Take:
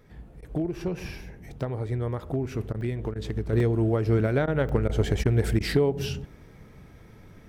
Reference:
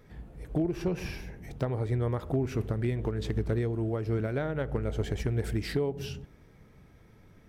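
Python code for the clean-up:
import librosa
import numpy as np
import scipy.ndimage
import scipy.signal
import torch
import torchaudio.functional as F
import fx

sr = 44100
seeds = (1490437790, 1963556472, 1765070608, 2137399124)

y = fx.fix_interpolate(x, sr, at_s=(2.81, 3.6, 4.69), length_ms=2.7)
y = fx.fix_interpolate(y, sr, at_s=(0.41, 2.73, 3.14, 4.46, 4.88, 5.24, 5.59), length_ms=13.0)
y = fx.gain(y, sr, db=fx.steps((0.0, 0.0), (3.53, -7.0)))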